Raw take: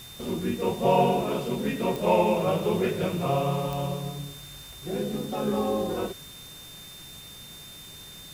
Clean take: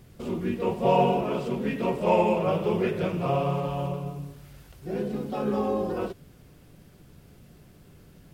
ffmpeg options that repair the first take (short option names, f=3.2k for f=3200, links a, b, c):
-af "adeclick=t=4,bandreject=f=3.6k:w=30,afftdn=nr=8:nf=-45"